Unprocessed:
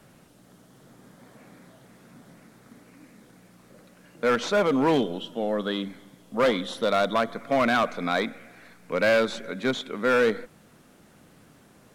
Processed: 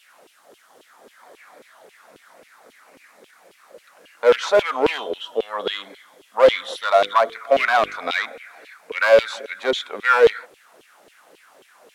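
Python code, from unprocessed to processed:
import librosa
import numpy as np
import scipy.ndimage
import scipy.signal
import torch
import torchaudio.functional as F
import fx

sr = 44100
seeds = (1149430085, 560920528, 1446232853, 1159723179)

y = fx.diode_clip(x, sr, knee_db=-16.0)
y = fx.filter_lfo_highpass(y, sr, shape='saw_down', hz=3.7, low_hz=380.0, high_hz=3200.0, q=3.6)
y = fx.hum_notches(y, sr, base_hz=50, count=10, at=(6.85, 8.03))
y = y * librosa.db_to_amplitude(3.0)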